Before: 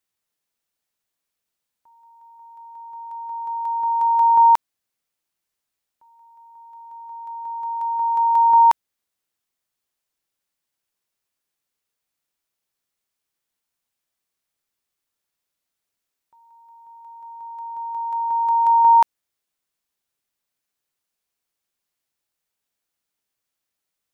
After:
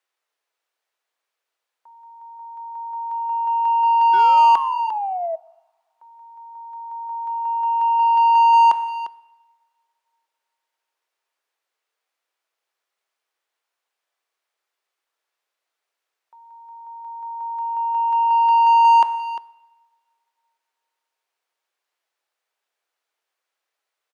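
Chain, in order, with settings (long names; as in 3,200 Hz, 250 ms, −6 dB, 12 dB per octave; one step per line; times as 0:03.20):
high-pass filter 370 Hz 24 dB per octave
far-end echo of a speakerphone 350 ms, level −16 dB
sound drawn into the spectrogram fall, 0:04.13–0:05.36, 640–1,500 Hz −31 dBFS
coupled-rooms reverb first 0.86 s, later 3 s, from −27 dB, DRR 18 dB
mid-hump overdrive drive 15 dB, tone 1,500 Hz, clips at −7.5 dBFS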